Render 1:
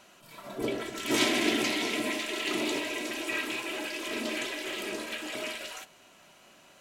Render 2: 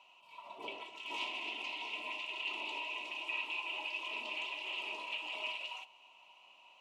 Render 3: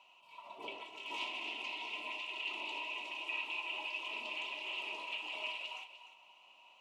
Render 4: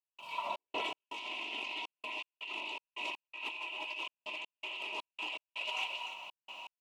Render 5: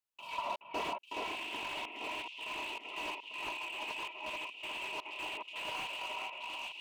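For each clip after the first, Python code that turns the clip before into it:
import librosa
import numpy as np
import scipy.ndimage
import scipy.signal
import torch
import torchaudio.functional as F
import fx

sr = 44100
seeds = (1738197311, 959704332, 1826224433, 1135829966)

y1 = fx.rider(x, sr, range_db=4, speed_s=0.5)
y1 = fx.double_bandpass(y1, sr, hz=1600.0, octaves=1.5)
y2 = y1 + 10.0 ** (-12.0 / 20.0) * np.pad(y1, (int(298 * sr / 1000.0), 0))[:len(y1)]
y2 = F.gain(torch.from_numpy(y2), -1.0).numpy()
y3 = fx.over_compress(y2, sr, threshold_db=-49.0, ratio=-1.0)
y3 = fx.step_gate(y3, sr, bpm=81, pattern='.xx.x.xxxx.x', floor_db=-60.0, edge_ms=4.5)
y3 = F.gain(torch.from_numpy(y3), 9.0).numpy()
y4 = fx.echo_alternate(y3, sr, ms=423, hz=2400.0, feedback_pct=65, wet_db=-2.5)
y4 = fx.slew_limit(y4, sr, full_power_hz=26.0)
y4 = F.gain(torch.from_numpy(y4), 1.0).numpy()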